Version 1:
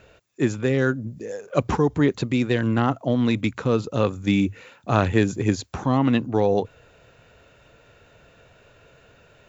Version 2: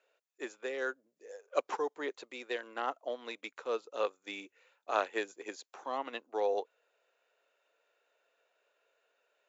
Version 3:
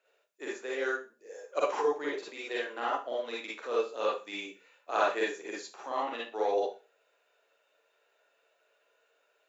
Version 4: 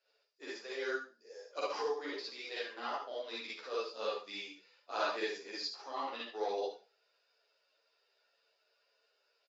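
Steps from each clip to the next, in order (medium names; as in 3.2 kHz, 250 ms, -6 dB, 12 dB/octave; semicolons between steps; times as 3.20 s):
high-pass 440 Hz 24 dB/octave; upward expansion 1.5:1, over -45 dBFS; trim -7 dB
Schroeder reverb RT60 0.31 s, DRR -5.5 dB; trim -2 dB
resonant low-pass 4.9 kHz, resonance Q 14; delay 72 ms -8.5 dB; three-phase chorus; trim -5 dB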